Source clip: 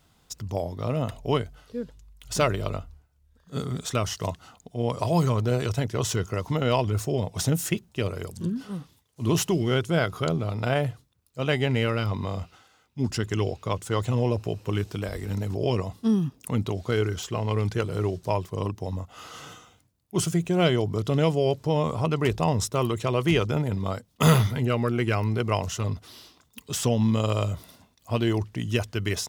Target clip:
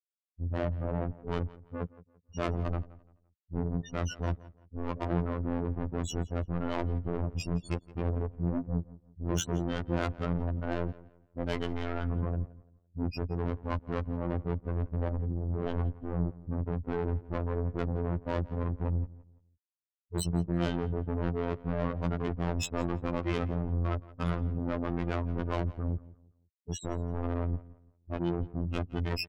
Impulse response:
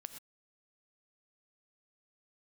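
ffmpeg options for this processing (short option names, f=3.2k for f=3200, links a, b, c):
-filter_complex "[0:a]afftfilt=real='re*gte(hypot(re,im),0.112)':imag='im*gte(hypot(re,im),0.112)':win_size=1024:overlap=0.75,areverse,acompressor=threshold=-32dB:ratio=10,areverse,asplit=2[a][b];[b]asetrate=22050,aresample=44100,atempo=2,volume=-2dB[c];[a][c]amix=inputs=2:normalize=0,asoftclip=type=tanh:threshold=-38dB,acontrast=46,afftfilt=real='hypot(re,im)*cos(PI*b)':imag='0':win_size=2048:overlap=0.75,asplit=2[d][e];[e]adelay=170,lowpass=f=3.2k:p=1,volume=-19dB,asplit=2[f][g];[g]adelay=170,lowpass=f=3.2k:p=1,volume=0.31,asplit=2[h][i];[i]adelay=170,lowpass=f=3.2k:p=1,volume=0.31[j];[d][f][h][j]amix=inputs=4:normalize=0,volume=7.5dB"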